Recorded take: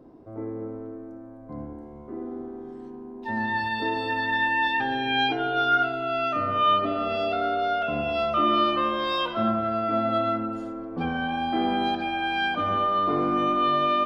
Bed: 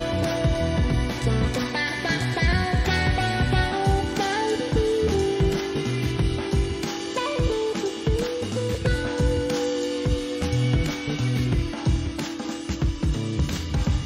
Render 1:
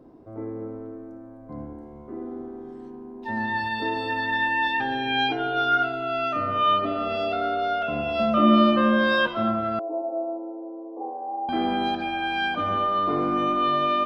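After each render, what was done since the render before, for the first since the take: 8.19–9.27 s: small resonant body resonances 220/560/1600 Hz, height 16 dB, ringing for 95 ms; 9.79–11.49 s: Chebyshev band-pass 300–1000 Hz, order 5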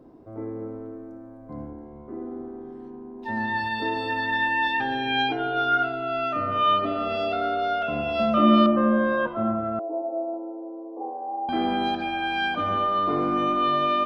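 1.70–3.19 s: low-pass 2.6 kHz 6 dB/octave; 5.22–6.52 s: treble shelf 4 kHz -6.5 dB; 8.66–10.34 s: low-pass 1.2 kHz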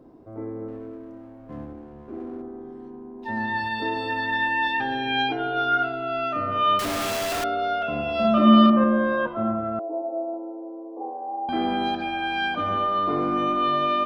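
0.68–2.42 s: sliding maximum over 9 samples; 6.79–7.44 s: one-bit comparator; 8.21–8.84 s: doubling 36 ms -3.5 dB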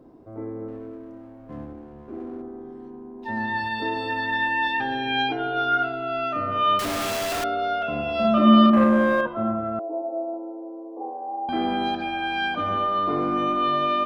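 8.73–9.21 s: waveshaping leveller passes 1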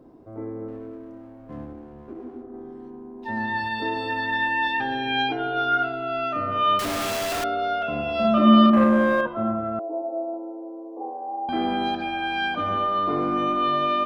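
2.13–2.54 s: detune thickener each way 54 cents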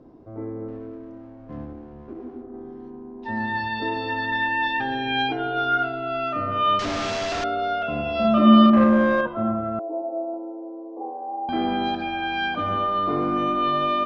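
steep low-pass 6.5 kHz 36 dB/octave; bass shelf 170 Hz +4 dB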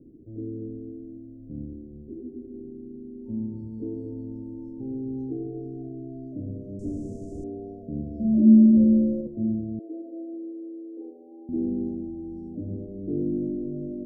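inverse Chebyshev band-stop 1.2–3.6 kHz, stop band 70 dB; peaking EQ 1.8 kHz -5.5 dB 1.2 oct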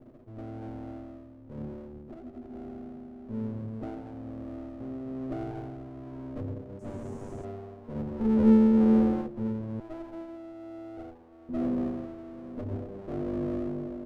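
comb filter that takes the minimum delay 8.2 ms; tremolo 1.1 Hz, depth 43%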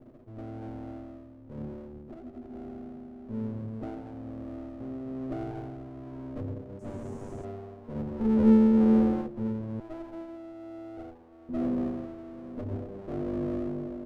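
no audible change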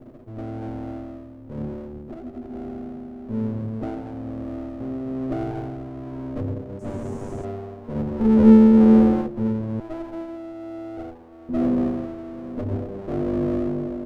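trim +8 dB

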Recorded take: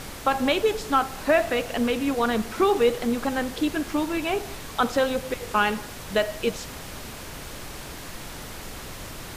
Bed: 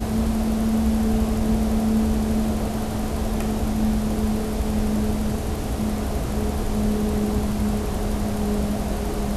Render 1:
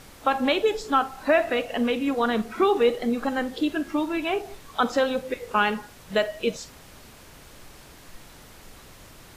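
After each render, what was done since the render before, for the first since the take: noise print and reduce 10 dB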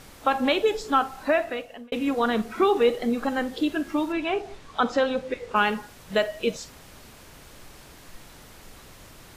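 1.16–1.92 s: fade out; 4.12–5.56 s: distance through air 59 m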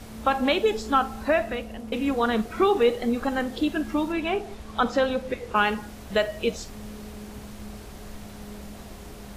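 add bed -18 dB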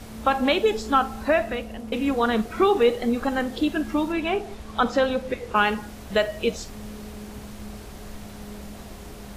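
trim +1.5 dB

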